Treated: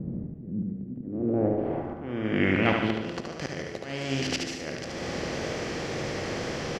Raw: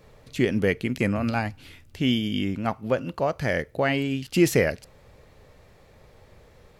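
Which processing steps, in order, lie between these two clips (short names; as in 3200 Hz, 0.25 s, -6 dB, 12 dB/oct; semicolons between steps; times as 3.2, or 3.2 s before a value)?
per-bin compression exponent 0.4; auto swell 0.539 s; low-pass sweep 200 Hz -> 5400 Hz, 0.79–3.18; wow and flutter 21 cents; feedback echo 73 ms, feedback 55%, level -4.5 dB; reverb RT60 1.0 s, pre-delay 59 ms, DRR 11.5 dB; gain -5.5 dB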